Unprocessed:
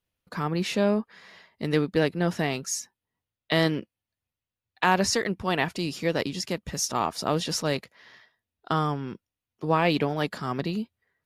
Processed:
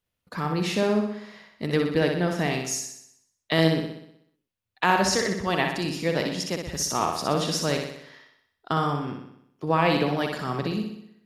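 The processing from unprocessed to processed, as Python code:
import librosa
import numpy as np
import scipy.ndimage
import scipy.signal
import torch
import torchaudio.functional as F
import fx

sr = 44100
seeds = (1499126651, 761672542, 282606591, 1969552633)

y = fx.room_flutter(x, sr, wall_m=10.6, rt60_s=0.73)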